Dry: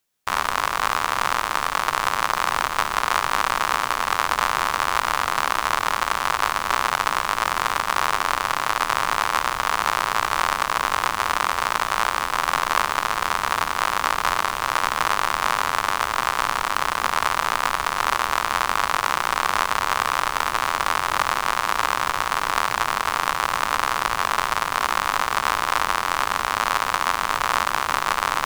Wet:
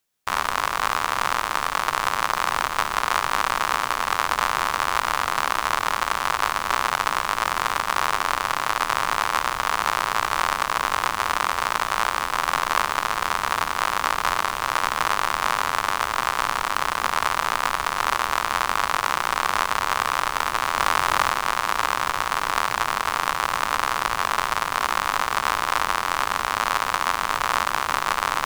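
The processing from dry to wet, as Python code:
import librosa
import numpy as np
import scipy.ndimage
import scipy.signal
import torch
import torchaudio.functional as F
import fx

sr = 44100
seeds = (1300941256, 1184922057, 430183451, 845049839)

y = fx.env_flatten(x, sr, amount_pct=50, at=(20.77, 21.29))
y = y * librosa.db_to_amplitude(-1.0)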